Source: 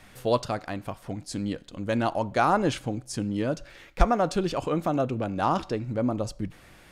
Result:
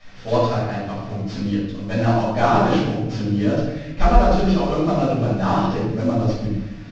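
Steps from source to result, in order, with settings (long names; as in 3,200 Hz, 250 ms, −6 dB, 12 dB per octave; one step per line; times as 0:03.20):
variable-slope delta modulation 32 kbit/s
double-tracking delay 26 ms −10.5 dB
rectangular room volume 390 cubic metres, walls mixed, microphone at 6.2 metres
level −8 dB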